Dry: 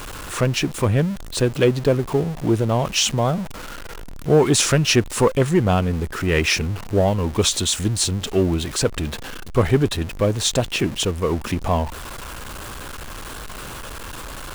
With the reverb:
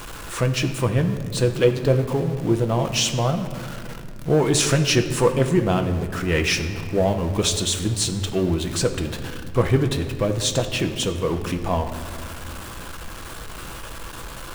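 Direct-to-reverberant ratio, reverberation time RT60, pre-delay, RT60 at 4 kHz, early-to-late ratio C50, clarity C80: 5.5 dB, 2.0 s, 6 ms, 1.3 s, 9.5 dB, 10.5 dB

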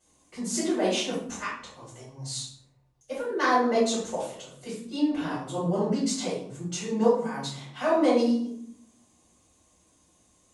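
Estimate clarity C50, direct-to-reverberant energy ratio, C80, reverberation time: 2.5 dB, -10.5 dB, 7.0 dB, 0.65 s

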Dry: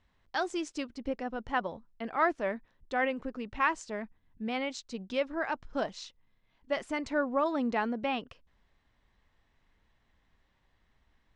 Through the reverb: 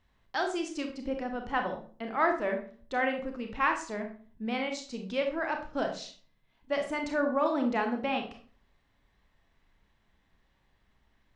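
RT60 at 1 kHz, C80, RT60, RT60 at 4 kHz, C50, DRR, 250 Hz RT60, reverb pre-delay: 0.40 s, 13.0 dB, 0.45 s, 0.35 s, 8.0 dB, 4.0 dB, 0.55 s, 27 ms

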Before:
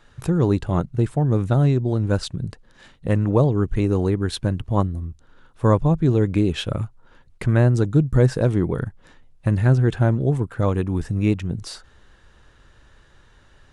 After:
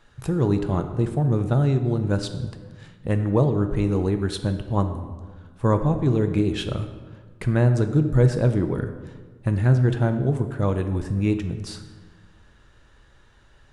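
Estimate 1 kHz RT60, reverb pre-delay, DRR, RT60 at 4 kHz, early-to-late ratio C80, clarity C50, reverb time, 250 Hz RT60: 1.4 s, 3 ms, 7.0 dB, 0.95 s, 11.0 dB, 9.5 dB, 1.5 s, 1.6 s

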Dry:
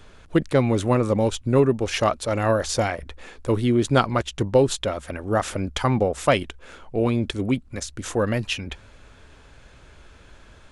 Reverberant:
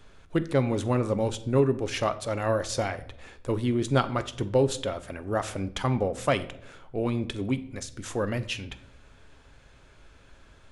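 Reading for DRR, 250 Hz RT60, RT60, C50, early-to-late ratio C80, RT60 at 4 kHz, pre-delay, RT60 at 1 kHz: 11.0 dB, 0.90 s, 0.75 s, 15.5 dB, 19.0 dB, 0.50 s, 7 ms, 0.65 s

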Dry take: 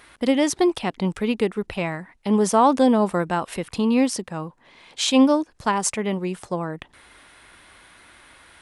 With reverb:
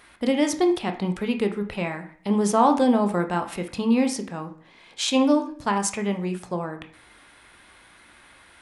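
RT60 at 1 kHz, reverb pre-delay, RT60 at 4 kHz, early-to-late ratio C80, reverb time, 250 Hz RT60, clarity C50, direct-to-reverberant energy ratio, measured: 0.50 s, 15 ms, 0.45 s, 15.5 dB, 0.50 s, 0.60 s, 11.0 dB, 5.5 dB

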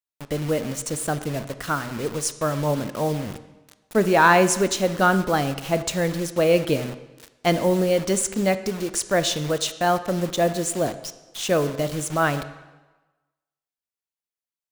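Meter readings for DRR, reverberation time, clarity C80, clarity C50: 11.5 dB, 1.2 s, 14.5 dB, 13.0 dB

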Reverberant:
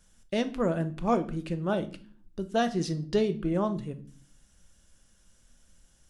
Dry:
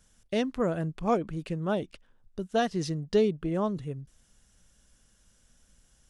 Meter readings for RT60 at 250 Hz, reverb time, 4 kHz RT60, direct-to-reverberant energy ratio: 0.80 s, 0.45 s, 0.35 s, 9.0 dB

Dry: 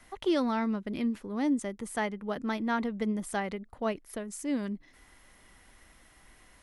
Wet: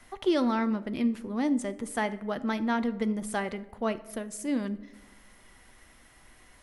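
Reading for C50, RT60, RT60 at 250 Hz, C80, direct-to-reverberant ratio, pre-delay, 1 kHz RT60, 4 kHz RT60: 16.0 dB, 1.2 s, 1.3 s, 19.0 dB, 10.5 dB, 8 ms, 0.95 s, 0.55 s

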